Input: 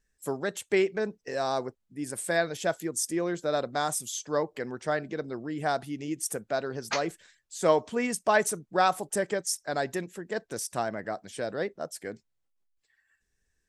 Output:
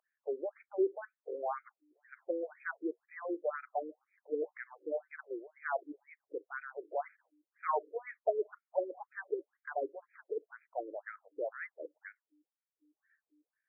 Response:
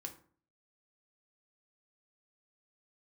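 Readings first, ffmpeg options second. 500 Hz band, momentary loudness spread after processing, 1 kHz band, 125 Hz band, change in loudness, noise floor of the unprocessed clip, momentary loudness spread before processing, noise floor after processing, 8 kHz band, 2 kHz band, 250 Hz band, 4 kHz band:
−8.0 dB, 13 LU, −10.0 dB, below −40 dB, −9.5 dB, −77 dBFS, 11 LU, below −85 dBFS, below −40 dB, −11.5 dB, −11.5 dB, below −40 dB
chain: -af "aeval=exprs='val(0)+0.00355*(sin(2*PI*60*n/s)+sin(2*PI*2*60*n/s)/2+sin(2*PI*3*60*n/s)/3+sin(2*PI*4*60*n/s)/4+sin(2*PI*5*60*n/s)/5)':channel_layout=same,afftfilt=real='re*between(b*sr/1024,370*pow(1800/370,0.5+0.5*sin(2*PI*2*pts/sr))/1.41,370*pow(1800/370,0.5+0.5*sin(2*PI*2*pts/sr))*1.41)':imag='im*between(b*sr/1024,370*pow(1800/370,0.5+0.5*sin(2*PI*2*pts/sr))/1.41,370*pow(1800/370,0.5+0.5*sin(2*PI*2*pts/sr))*1.41)':win_size=1024:overlap=0.75,volume=-3dB"

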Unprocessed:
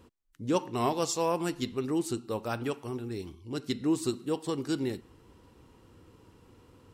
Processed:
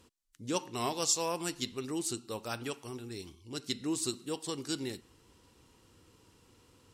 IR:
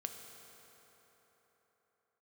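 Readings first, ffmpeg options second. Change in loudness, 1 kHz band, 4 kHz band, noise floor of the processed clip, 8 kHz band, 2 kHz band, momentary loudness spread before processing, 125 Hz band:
−3.5 dB, −5.0 dB, +3.0 dB, −65 dBFS, +5.5 dB, −1.5 dB, 10 LU, −7.0 dB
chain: -af "equalizer=frequency=7100:width_type=o:width=2.9:gain=12.5,volume=-7dB"

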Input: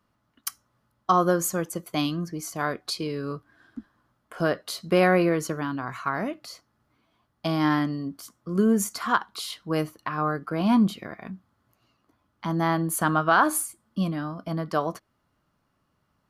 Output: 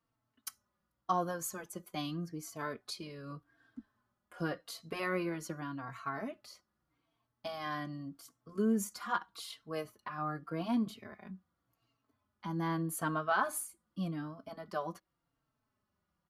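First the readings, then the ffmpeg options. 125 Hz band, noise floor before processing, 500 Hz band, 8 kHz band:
−12.0 dB, −73 dBFS, −13.0 dB, −11.5 dB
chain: -filter_complex "[0:a]asplit=2[link_01][link_02];[link_02]adelay=3.9,afreqshift=-0.85[link_03];[link_01][link_03]amix=inputs=2:normalize=1,volume=-8.5dB"

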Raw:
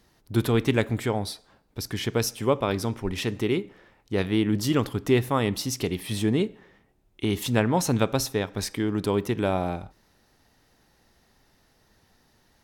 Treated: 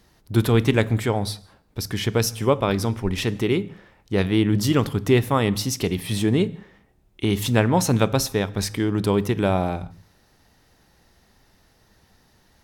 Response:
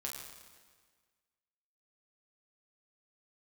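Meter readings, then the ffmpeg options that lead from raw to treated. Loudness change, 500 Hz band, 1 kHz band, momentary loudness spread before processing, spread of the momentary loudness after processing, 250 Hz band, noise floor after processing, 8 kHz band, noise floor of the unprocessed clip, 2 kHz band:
+4.0 dB, +3.5 dB, +3.5 dB, 8 LU, 9 LU, +3.5 dB, −60 dBFS, +3.5 dB, −64 dBFS, +3.5 dB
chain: -filter_complex "[0:a]asplit=2[link_01][link_02];[link_02]lowshelf=frequency=260:width_type=q:width=1.5:gain=12[link_03];[1:a]atrim=start_sample=2205,afade=type=out:start_time=0.26:duration=0.01,atrim=end_sample=11907[link_04];[link_03][link_04]afir=irnorm=-1:irlink=0,volume=-18dB[link_05];[link_01][link_05]amix=inputs=2:normalize=0,volume=3dB"

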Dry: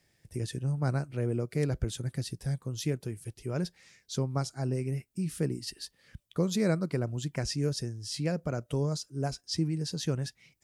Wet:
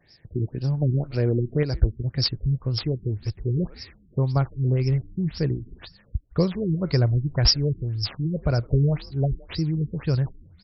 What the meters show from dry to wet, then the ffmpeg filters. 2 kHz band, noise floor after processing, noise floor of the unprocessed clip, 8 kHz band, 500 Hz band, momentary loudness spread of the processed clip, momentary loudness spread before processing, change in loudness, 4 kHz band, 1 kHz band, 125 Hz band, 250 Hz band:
+3.5 dB, −56 dBFS, −72 dBFS, can't be measured, +5.0 dB, 8 LU, 7 LU, +8.0 dB, +10.5 dB, +3.5 dB, +9.0 dB, +5.5 dB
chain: -filter_complex "[0:a]bandreject=frequency=1300:width=15,asubboost=boost=8.5:cutoff=73,aexciter=amount=15.6:drive=5.8:freq=5000,alimiter=limit=-9dB:level=0:latency=1:release=351,acontrast=59,asoftclip=type=tanh:threshold=-6.5dB,asplit=4[link_01][link_02][link_03][link_04];[link_02]adelay=162,afreqshift=-110,volume=-23dB[link_05];[link_03]adelay=324,afreqshift=-220,volume=-30.1dB[link_06];[link_04]adelay=486,afreqshift=-330,volume=-37.3dB[link_07];[link_01][link_05][link_06][link_07]amix=inputs=4:normalize=0,afftfilt=real='re*lt(b*sr/1024,400*pow(5700/400,0.5+0.5*sin(2*PI*1.9*pts/sr)))':imag='im*lt(b*sr/1024,400*pow(5700/400,0.5+0.5*sin(2*PI*1.9*pts/sr)))':win_size=1024:overlap=0.75,volume=3dB"

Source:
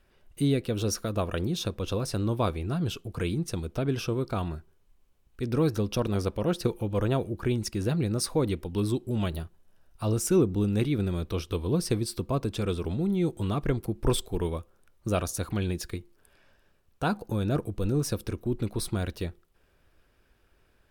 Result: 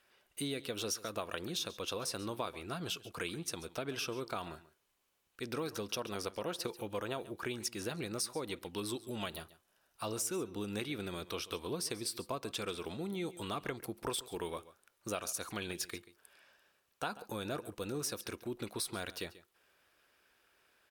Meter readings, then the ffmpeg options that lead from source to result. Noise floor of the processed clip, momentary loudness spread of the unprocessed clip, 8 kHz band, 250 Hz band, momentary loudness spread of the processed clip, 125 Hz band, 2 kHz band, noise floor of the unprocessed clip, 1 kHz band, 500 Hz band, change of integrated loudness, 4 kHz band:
−77 dBFS, 6 LU, −3.0 dB, −13.5 dB, 5 LU, −19.0 dB, −2.5 dB, −66 dBFS, −6.0 dB, −10.0 dB, −10.0 dB, −2.0 dB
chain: -af "highpass=frequency=1100:poles=1,acompressor=threshold=-36dB:ratio=6,aecho=1:1:138:0.133,volume=2dB"

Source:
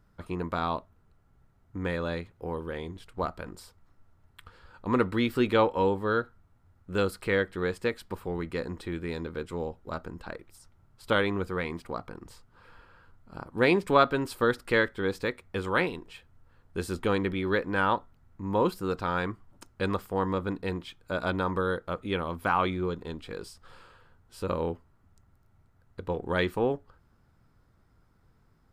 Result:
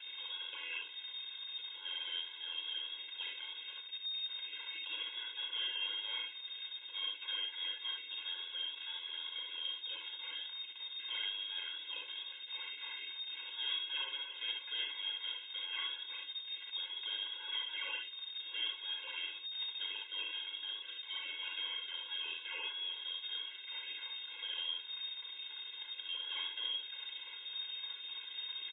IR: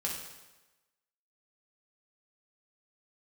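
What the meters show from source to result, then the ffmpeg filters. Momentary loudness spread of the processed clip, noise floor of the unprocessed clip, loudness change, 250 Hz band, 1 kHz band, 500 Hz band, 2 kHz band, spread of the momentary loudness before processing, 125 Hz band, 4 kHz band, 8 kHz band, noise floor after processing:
5 LU, −64 dBFS, −10.0 dB, below −35 dB, −24.0 dB, −34.5 dB, −10.5 dB, 16 LU, below −40 dB, +7.5 dB, below −25 dB, −50 dBFS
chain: -filter_complex "[0:a]aeval=exprs='val(0)+0.5*0.0188*sgn(val(0))':channel_layout=same,asplit=2[link_01][link_02];[link_02]acompressor=threshold=-36dB:ratio=6,volume=2dB[link_03];[link_01][link_03]amix=inputs=2:normalize=0,flanger=delay=7:depth=9.7:regen=82:speed=0.69:shape=triangular,aresample=11025,asoftclip=type=tanh:threshold=-28.5dB,aresample=44100,acrusher=samples=14:mix=1:aa=0.000001:lfo=1:lforange=8.4:lforate=3.4,aecho=1:1:36|60|70:0.398|0.531|0.531,lowpass=frequency=3100:width_type=q:width=0.5098,lowpass=frequency=3100:width_type=q:width=0.6013,lowpass=frequency=3100:width_type=q:width=0.9,lowpass=frequency=3100:width_type=q:width=2.563,afreqshift=-3700,afftfilt=real='re*eq(mod(floor(b*sr/1024/280),2),1)':imag='im*eq(mod(floor(b*sr/1024/280),2),1)':win_size=1024:overlap=0.75,volume=-7dB"

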